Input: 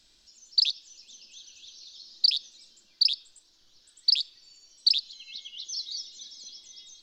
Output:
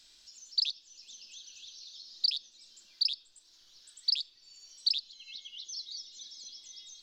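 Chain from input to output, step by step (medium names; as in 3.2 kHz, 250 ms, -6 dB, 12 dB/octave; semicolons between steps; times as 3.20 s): tape noise reduction on one side only encoder only; trim -6.5 dB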